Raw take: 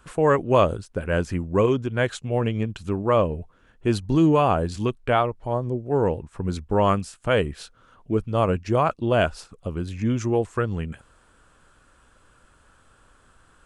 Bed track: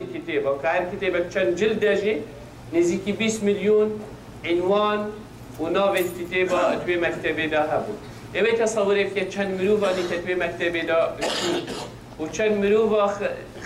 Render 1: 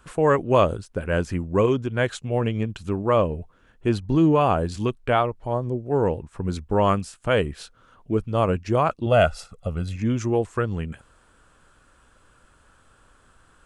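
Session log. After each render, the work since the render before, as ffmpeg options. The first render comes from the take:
-filter_complex "[0:a]asettb=1/sr,asplit=3[a][b][c];[a]atrim=end=3.894[d];[b]atrim=start=3.89:end=4.41,asetpts=PTS-STARTPTS,afade=t=in:d=0.004:c=qsin,afade=t=out:st=0.516:d=0.004:c=qsin,highshelf=f=5k:g=-9.5[e];[c]atrim=start=4.406[f];[d][e]acrossfade=d=0.004:c1=hsin:c2=qsin[g];[g][f]acrossfade=d=0.004:c1=qsin:c2=hsin,asettb=1/sr,asplit=3[h][i][j];[h]atrim=end=9.064[k];[i]atrim=start=9.06:end=9.96,asetpts=PTS-STARTPTS,afade=t=in:d=0.004:c=qsin,afade=t=out:st=0.896:d=0.004:c=qsin,aecho=1:1:1.5:0.65,atrim=end_sample=39690[l];[j]atrim=start=9.956[m];[k][l]acrossfade=d=0.004:c1=hsin:c2=qsin[n];[n][m]acrossfade=d=0.004:c1=qsin:c2=hsin"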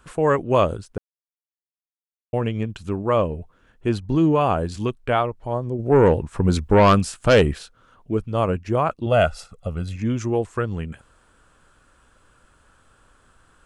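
-filter_complex "[0:a]asplit=3[a][b][c];[a]afade=t=out:st=5.78:d=0.02[d];[b]aeval=exprs='0.376*sin(PI/2*1.78*val(0)/0.376)':c=same,afade=t=in:st=5.78:d=0.02,afade=t=out:st=7.57:d=0.02[e];[c]afade=t=in:st=7.57:d=0.02[f];[d][e][f]amix=inputs=3:normalize=0,asettb=1/sr,asplit=3[g][h][i];[g]atrim=end=8.474[j];[h]atrim=start=8.47:end=8.98,asetpts=PTS-STARTPTS,afade=t=in:d=0.004:c=qsin,afade=t=out:st=0.506:d=0.004:c=qsin,equalizer=f=4.9k:w=0.98:g=-5[k];[i]atrim=start=8.976[l];[j][k]acrossfade=d=0.004:c1=hsin:c2=qsin[m];[m][l]acrossfade=d=0.004:c1=qsin:c2=hsin,asplit=3[n][o][p];[n]atrim=end=0.98,asetpts=PTS-STARTPTS,afade=t=out:st=0.976:d=0.004:c=hsin[q];[o]atrim=start=0.98:end=2.33,asetpts=PTS-STARTPTS,volume=0[r];[p]atrim=start=2.33,asetpts=PTS-STARTPTS,afade=t=in:d=0.004:c=hsin[s];[q][r][s]concat=n=3:v=0:a=1"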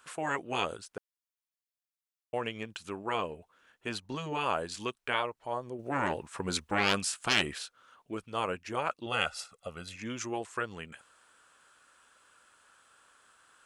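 -af "highpass=f=1.4k:p=1,afftfilt=real='re*lt(hypot(re,im),0.251)':imag='im*lt(hypot(re,im),0.251)':win_size=1024:overlap=0.75"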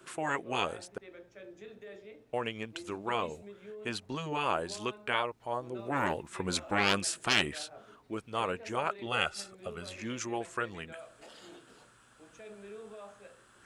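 -filter_complex "[1:a]volume=-28dB[a];[0:a][a]amix=inputs=2:normalize=0"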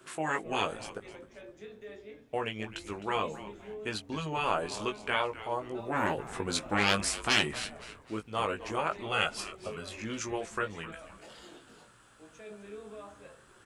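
-filter_complex "[0:a]asplit=2[a][b];[b]adelay=19,volume=-5.5dB[c];[a][c]amix=inputs=2:normalize=0,asplit=5[d][e][f][g][h];[e]adelay=259,afreqshift=-140,volume=-15dB[i];[f]adelay=518,afreqshift=-280,volume=-23.2dB[j];[g]adelay=777,afreqshift=-420,volume=-31.4dB[k];[h]adelay=1036,afreqshift=-560,volume=-39.5dB[l];[d][i][j][k][l]amix=inputs=5:normalize=0"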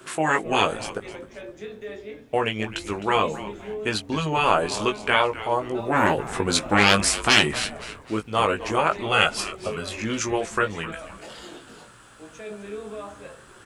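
-af "volume=10dB,alimiter=limit=-1dB:level=0:latency=1"

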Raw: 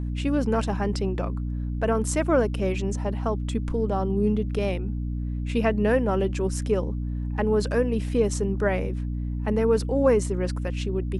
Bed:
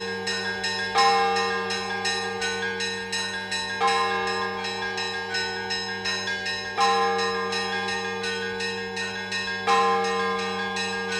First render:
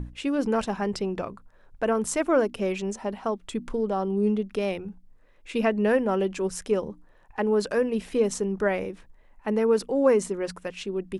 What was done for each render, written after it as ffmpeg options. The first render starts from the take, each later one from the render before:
-af "bandreject=f=60:t=h:w=6,bandreject=f=120:t=h:w=6,bandreject=f=180:t=h:w=6,bandreject=f=240:t=h:w=6,bandreject=f=300:t=h:w=6"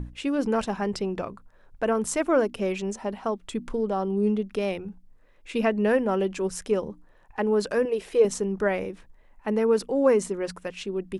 -filter_complex "[0:a]asettb=1/sr,asplit=3[a][b][c];[a]atrim=end=7.854[d];[b]atrim=start=7.85:end=8.25,asetpts=PTS-STARTPTS,afade=t=in:d=0.004:c=qsin,afade=t=out:st=0.396:d=0.004:c=qsin,lowshelf=f=310:t=q:w=3:g=-6.5[e];[c]atrim=start=8.246[f];[d][e]acrossfade=d=0.004:c1=hsin:c2=qsin[g];[g][f]acrossfade=d=0.004:c1=qsin:c2=hsin"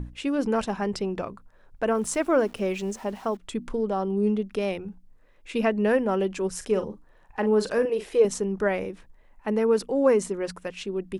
-filter_complex "[0:a]asettb=1/sr,asplit=3[a][b][c];[a]atrim=end=1.884[d];[b]atrim=start=1.88:end=3.37,asetpts=PTS-STARTPTS,afade=t=in:d=0.004:c=qsin,afade=t=out:st=1.486:d=0.004:c=qsin,aeval=exprs='val(0)*gte(abs(val(0)),0.00473)':c=same[e];[c]atrim=start=3.366[f];[d][e]acrossfade=d=0.004:c1=hsin:c2=qsin[g];[g][f]acrossfade=d=0.004:c1=qsin:c2=hsin,asettb=1/sr,asplit=3[h][i][j];[h]atrim=end=6.554[k];[i]atrim=start=6.55:end=8.16,asetpts=PTS-STARTPTS,afade=t=in:d=0.004:c=qsin,afade=t=out:st=1.606:d=0.004:c=qsin,asplit=2[l][m];[m]adelay=42,volume=-10.5dB[n];[l][n]amix=inputs=2:normalize=0,atrim=end_sample=71001[o];[j]atrim=start=8.156[p];[k][o]acrossfade=d=0.004:c1=hsin:c2=qsin[q];[q][p]acrossfade=d=0.004:c1=qsin:c2=hsin"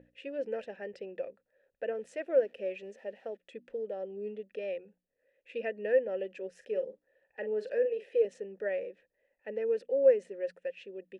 -filter_complex "[0:a]asplit=3[a][b][c];[a]bandpass=f=530:t=q:w=8,volume=0dB[d];[b]bandpass=f=1.84k:t=q:w=8,volume=-6dB[e];[c]bandpass=f=2.48k:t=q:w=8,volume=-9dB[f];[d][e][f]amix=inputs=3:normalize=0"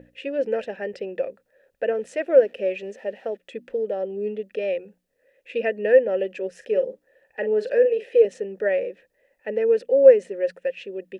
-af "volume=11dB"

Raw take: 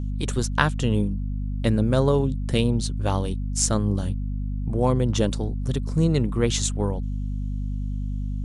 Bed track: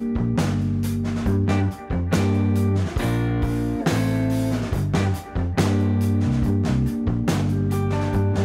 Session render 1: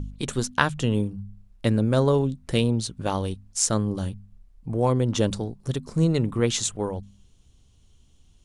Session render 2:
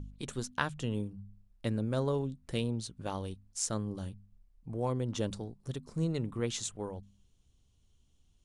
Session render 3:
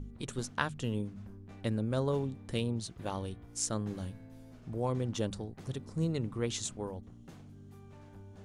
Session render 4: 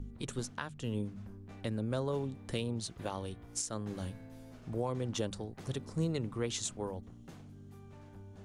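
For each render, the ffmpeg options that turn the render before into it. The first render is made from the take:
-af "bandreject=f=50:t=h:w=4,bandreject=f=100:t=h:w=4,bandreject=f=150:t=h:w=4,bandreject=f=200:t=h:w=4,bandreject=f=250:t=h:w=4"
-af "volume=-11dB"
-filter_complex "[1:a]volume=-30.5dB[a];[0:a][a]amix=inputs=2:normalize=0"
-filter_complex "[0:a]acrossover=split=380[a][b];[b]dynaudnorm=f=280:g=13:m=3.5dB[c];[a][c]amix=inputs=2:normalize=0,alimiter=limit=-23dB:level=0:latency=1:release=442"

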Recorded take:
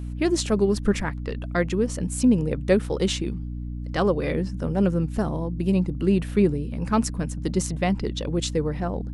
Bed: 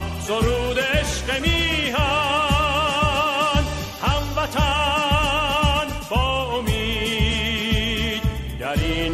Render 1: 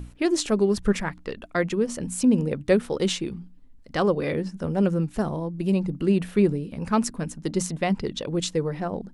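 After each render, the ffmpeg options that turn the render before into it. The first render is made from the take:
-af "bandreject=f=60:t=h:w=6,bandreject=f=120:t=h:w=6,bandreject=f=180:t=h:w=6,bandreject=f=240:t=h:w=6,bandreject=f=300:t=h:w=6"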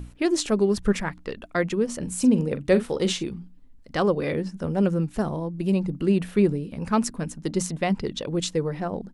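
-filter_complex "[0:a]asplit=3[a][b][c];[a]afade=t=out:st=2.01:d=0.02[d];[b]asplit=2[e][f];[f]adelay=43,volume=-12.5dB[g];[e][g]amix=inputs=2:normalize=0,afade=t=in:st=2.01:d=0.02,afade=t=out:st=3.23:d=0.02[h];[c]afade=t=in:st=3.23:d=0.02[i];[d][h][i]amix=inputs=3:normalize=0"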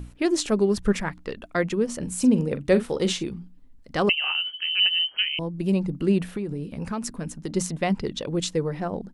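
-filter_complex "[0:a]asettb=1/sr,asplit=3[a][b][c];[a]atrim=end=4.094[d];[b]atrim=start=4.09:end=5.39,asetpts=PTS-STARTPTS,afade=t=in:d=0.004:c=qsin,afade=t=out:st=1.296:d=0.004:c=qsin,lowpass=f=2.7k:t=q:w=0.5098,lowpass=f=2.7k:t=q:w=0.6013,lowpass=f=2.7k:t=q:w=0.9,lowpass=f=2.7k:t=q:w=2.563,afreqshift=-3200[e];[c]atrim=start=5.386[f];[d][e]acrossfade=d=0.004:c1=hsin:c2=qsin[g];[g][f]acrossfade=d=0.004:c1=qsin:c2=hsin,asettb=1/sr,asplit=3[h][i][j];[h]atrim=end=6.284[k];[i]atrim=start=6.28:end=7.54,asetpts=PTS-STARTPTS,afade=t=in:d=0.004:c=qsin,afade=t=out:st=1.256:d=0.004:c=qsin,acompressor=threshold=-25dB:ratio=12:attack=3.2:release=140:knee=1:detection=peak[l];[j]atrim=start=7.536[m];[k][l]acrossfade=d=0.004:c1=hsin:c2=qsin[n];[n][m]acrossfade=d=0.004:c1=qsin:c2=hsin"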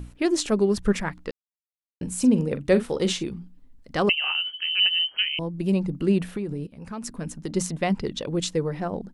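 -filter_complex "[0:a]asplit=4[a][b][c][d];[a]atrim=end=1.31,asetpts=PTS-STARTPTS,afade=t=out:st=1.306:d=0.004:c=hsin[e];[b]atrim=start=1.31:end=2.01,asetpts=PTS-STARTPTS,volume=0[f];[c]atrim=start=2.01:end=6.67,asetpts=PTS-STARTPTS,afade=t=in:d=0.004:c=hsin,afade=t=out:st=4.656:d=0.004:c=hsin:silence=0.158489[g];[d]atrim=start=6.67,asetpts=PTS-STARTPTS,afade=t=in:d=0.57:silence=0.158489[h];[e][f][g][h]concat=n=4:v=0:a=1"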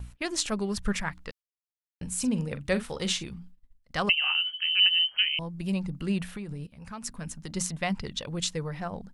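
-af "agate=range=-17dB:threshold=-45dB:ratio=16:detection=peak,equalizer=f=350:t=o:w=1.6:g=-13"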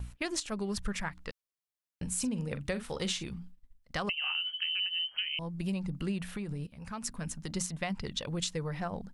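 -af "alimiter=limit=-17dB:level=0:latency=1:release=370,acompressor=threshold=-30dB:ratio=6"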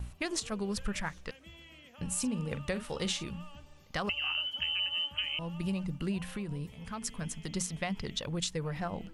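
-filter_complex "[1:a]volume=-33dB[a];[0:a][a]amix=inputs=2:normalize=0"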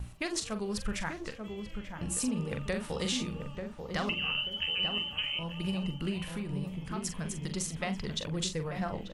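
-filter_complex "[0:a]asplit=2[a][b];[b]adelay=43,volume=-9dB[c];[a][c]amix=inputs=2:normalize=0,asplit=2[d][e];[e]adelay=888,lowpass=f=1k:p=1,volume=-5dB,asplit=2[f][g];[g]adelay=888,lowpass=f=1k:p=1,volume=0.41,asplit=2[h][i];[i]adelay=888,lowpass=f=1k:p=1,volume=0.41,asplit=2[j][k];[k]adelay=888,lowpass=f=1k:p=1,volume=0.41,asplit=2[l][m];[m]adelay=888,lowpass=f=1k:p=1,volume=0.41[n];[d][f][h][j][l][n]amix=inputs=6:normalize=0"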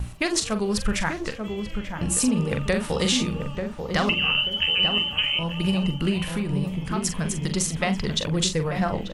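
-af "volume=10dB"

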